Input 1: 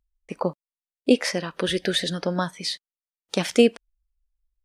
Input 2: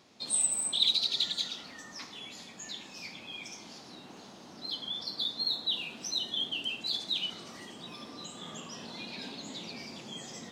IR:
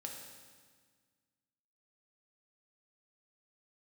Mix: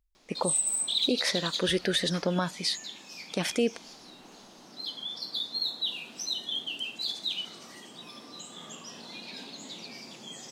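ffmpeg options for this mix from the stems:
-filter_complex "[0:a]volume=0.944[s0];[1:a]highpass=f=160:p=1,highshelf=f=6600:g=7,adelay=150,volume=0.841[s1];[s0][s1]amix=inputs=2:normalize=0,alimiter=limit=0.15:level=0:latency=1:release=78"

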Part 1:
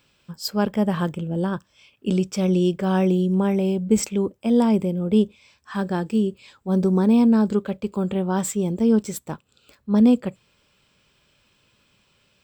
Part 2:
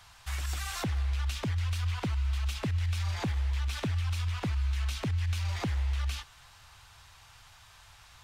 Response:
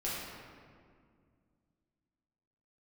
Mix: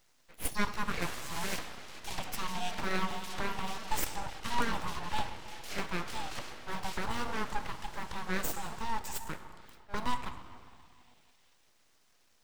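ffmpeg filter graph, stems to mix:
-filter_complex "[0:a]highpass=f=420:w=0.5412,highpass=f=420:w=1.3066,volume=0.596,asplit=2[s0][s1];[s1]volume=0.316[s2];[1:a]acompressor=threshold=0.02:ratio=6,adelay=750,volume=0.944,asplit=2[s3][s4];[s4]volume=0.473[s5];[2:a]atrim=start_sample=2205[s6];[s2][s5]amix=inputs=2:normalize=0[s7];[s7][s6]afir=irnorm=-1:irlink=0[s8];[s0][s3][s8]amix=inputs=3:normalize=0,highpass=320,aeval=exprs='abs(val(0))':c=same"

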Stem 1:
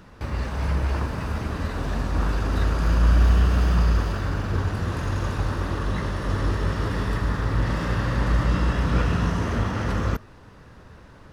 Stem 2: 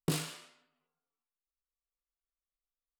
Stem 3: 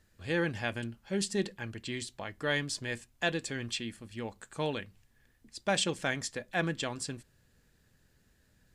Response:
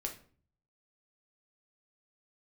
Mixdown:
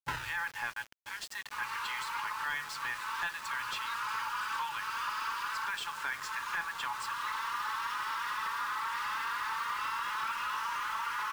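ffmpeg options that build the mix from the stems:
-filter_complex "[0:a]highpass=790,equalizer=f=1800:w=6.8:g=-7,asplit=2[s0][s1];[s1]adelay=4.1,afreqshift=2.8[s2];[s0][s2]amix=inputs=2:normalize=1,adelay=1300,volume=1.19[s3];[1:a]lowpass=f=7100:w=0.5412,lowpass=f=7100:w=1.3066,acrusher=samples=33:mix=1:aa=0.000001:lfo=1:lforange=19.8:lforate=0.75,volume=1.06,asplit=2[s4][s5];[s5]volume=0.0668[s6];[2:a]adynamicequalizer=threshold=0.00447:dfrequency=990:dqfactor=0.8:tfrequency=990:tqfactor=0.8:attack=5:release=100:ratio=0.375:range=4:mode=boostabove:tftype=bell,volume=1.06,asplit=2[s7][s8];[s8]volume=0.0944[s9];[s3][s7]amix=inputs=2:normalize=0,highpass=340,acompressor=threshold=0.0126:ratio=8,volume=1[s10];[3:a]atrim=start_sample=2205[s11];[s6][s9]amix=inputs=2:normalize=0[s12];[s12][s11]afir=irnorm=-1:irlink=0[s13];[s4][s10][s13]amix=inputs=3:normalize=0,afftfilt=real='re*(1-between(b*sr/4096,150,830))':imag='im*(1-between(b*sr/4096,150,830))':win_size=4096:overlap=0.75,asplit=2[s14][s15];[s15]highpass=f=720:p=1,volume=7.08,asoftclip=type=tanh:threshold=0.0891[s16];[s14][s16]amix=inputs=2:normalize=0,lowpass=f=1700:p=1,volume=0.501,aeval=exprs='val(0)*gte(abs(val(0)),0.00668)':c=same"

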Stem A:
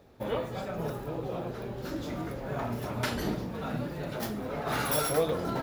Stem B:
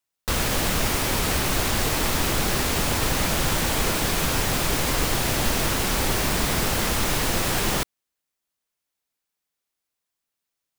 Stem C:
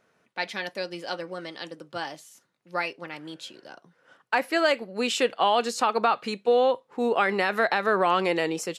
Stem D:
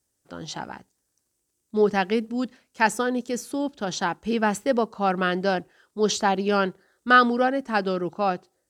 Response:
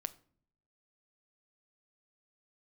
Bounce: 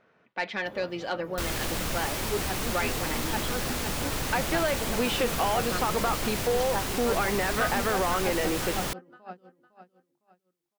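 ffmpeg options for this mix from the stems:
-filter_complex "[0:a]adelay=450,volume=0.251[s0];[1:a]adelay=1100,volume=0.447[s1];[2:a]lowpass=3100,acompressor=threshold=0.0631:ratio=6,volume=1.41[s2];[3:a]lowpass=f=2300:p=1,bandreject=f=50:t=h:w=6,bandreject=f=100:t=h:w=6,bandreject=f=150:t=h:w=6,bandreject=f=200:t=h:w=6,bandreject=f=250:t=h:w=6,bandreject=f=300:t=h:w=6,bandreject=f=350:t=h:w=6,aeval=exprs='val(0)*pow(10,-18*(0.5-0.5*cos(2*PI*5.9*n/s))/20)':c=same,adelay=500,volume=0.501,asplit=2[s3][s4];[s4]volume=0.376,aecho=0:1:507|1014|1521|2028:1|0.31|0.0961|0.0298[s5];[s0][s1][s2][s3][s5]amix=inputs=5:normalize=0,asoftclip=type=tanh:threshold=0.119"

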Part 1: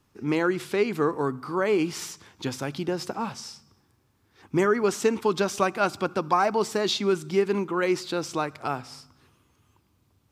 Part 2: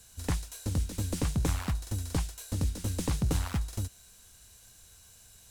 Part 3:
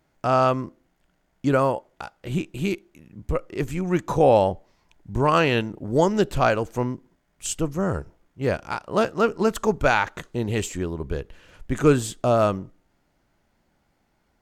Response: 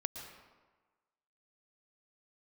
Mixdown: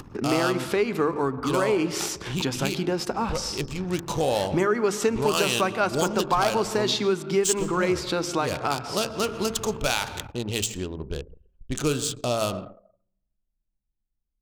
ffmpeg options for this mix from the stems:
-filter_complex "[0:a]bandreject=f=50:t=h:w=6,bandreject=f=100:t=h:w=6,bandreject=f=150:t=h:w=6,bandreject=f=200:t=h:w=6,bandreject=f=250:t=h:w=6,bandreject=f=300:t=h:w=6,bandreject=f=350:t=h:w=6,acompressor=mode=upward:threshold=0.0398:ratio=2.5,volume=1.33,asplit=2[s0][s1];[s1]volume=0.422[s2];[1:a]volume=0.1[s3];[2:a]adynamicsmooth=sensitivity=6:basefreq=2100,bandreject=f=56.4:t=h:w=4,bandreject=f=112.8:t=h:w=4,bandreject=f=169.2:t=h:w=4,bandreject=f=225.6:t=h:w=4,bandreject=f=282:t=h:w=4,bandreject=f=338.4:t=h:w=4,bandreject=f=394.8:t=h:w=4,bandreject=f=451.2:t=h:w=4,bandreject=f=507.6:t=h:w=4,bandreject=f=564:t=h:w=4,bandreject=f=620.4:t=h:w=4,bandreject=f=676.8:t=h:w=4,bandreject=f=733.2:t=h:w=4,bandreject=f=789.6:t=h:w=4,bandreject=f=846:t=h:w=4,bandreject=f=902.4:t=h:w=4,bandreject=f=958.8:t=h:w=4,bandreject=f=1015.2:t=h:w=4,bandreject=f=1071.6:t=h:w=4,bandreject=f=1128:t=h:w=4,bandreject=f=1184.4:t=h:w=4,bandreject=f=1240.8:t=h:w=4,bandreject=f=1297.2:t=h:w=4,bandreject=f=1353.6:t=h:w=4,bandreject=f=1410:t=h:w=4,bandreject=f=1466.4:t=h:w=4,bandreject=f=1522.8:t=h:w=4,bandreject=f=1579.2:t=h:w=4,bandreject=f=1635.6:t=h:w=4,bandreject=f=1692:t=h:w=4,bandreject=f=1748.4:t=h:w=4,aexciter=amount=7.9:drive=1.3:freq=2800,volume=0.501,asplit=2[s4][s5];[s5]volume=0.398[s6];[3:a]atrim=start_sample=2205[s7];[s2][s6]amix=inputs=2:normalize=0[s8];[s8][s7]afir=irnorm=-1:irlink=0[s9];[s0][s3][s4][s9]amix=inputs=4:normalize=0,anlmdn=1,acompressor=threshold=0.0708:ratio=2"

